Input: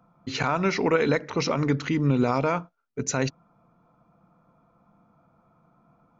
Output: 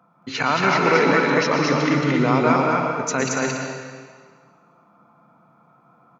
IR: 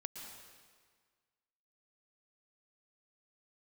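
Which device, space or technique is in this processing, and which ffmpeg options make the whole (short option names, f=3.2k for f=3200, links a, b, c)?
stadium PA: -filter_complex "[0:a]highpass=150,equalizer=f=1.5k:t=o:w=2.1:g=5.5,aecho=1:1:224.5|282.8:0.794|0.316[a];[1:a]atrim=start_sample=2205[b];[a][b]afir=irnorm=-1:irlink=0,volume=5dB"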